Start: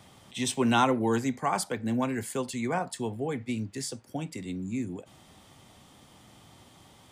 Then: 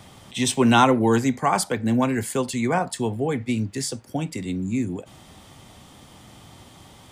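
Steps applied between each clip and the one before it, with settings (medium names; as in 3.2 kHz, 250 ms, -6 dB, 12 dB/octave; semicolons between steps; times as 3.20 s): bass shelf 73 Hz +6 dB; trim +7 dB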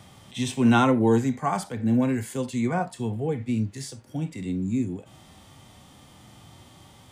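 harmonic-percussive split percussive -13 dB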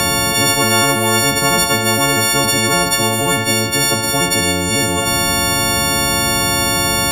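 partials quantised in pitch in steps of 4 st; spectrum-flattening compressor 10:1; trim +5 dB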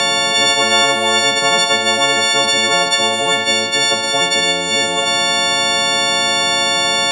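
in parallel at -5 dB: bit crusher 5-bit; on the sum: cabinet simulation 280–7900 Hz, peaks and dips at 310 Hz -9 dB, 620 Hz +4 dB, 1.3 kHz -4 dB, 1.9 kHz +3 dB, 3.5 kHz +7 dB, 6.1 kHz -3 dB; trim -3.5 dB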